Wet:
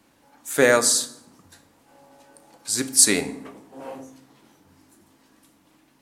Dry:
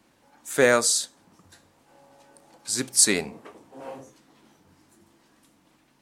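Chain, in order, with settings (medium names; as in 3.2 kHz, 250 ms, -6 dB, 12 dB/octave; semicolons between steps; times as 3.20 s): peaking EQ 13 kHz +5 dB 0.62 oct; on a send: reverberation RT60 0.85 s, pre-delay 4 ms, DRR 11 dB; on the sum: trim +1.5 dB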